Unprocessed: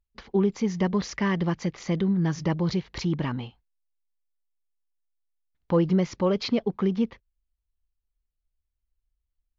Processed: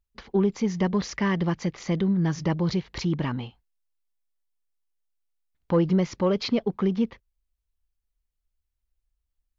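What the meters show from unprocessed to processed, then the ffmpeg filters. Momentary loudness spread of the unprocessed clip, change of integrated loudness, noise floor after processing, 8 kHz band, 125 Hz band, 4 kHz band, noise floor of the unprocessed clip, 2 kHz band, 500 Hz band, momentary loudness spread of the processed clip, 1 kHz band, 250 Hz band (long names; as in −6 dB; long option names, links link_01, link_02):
6 LU, +0.5 dB, −81 dBFS, can't be measured, +0.5 dB, +0.5 dB, −82 dBFS, +0.5 dB, +0.5 dB, 6 LU, +0.5 dB, +0.5 dB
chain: -af "acontrast=90,volume=-6.5dB"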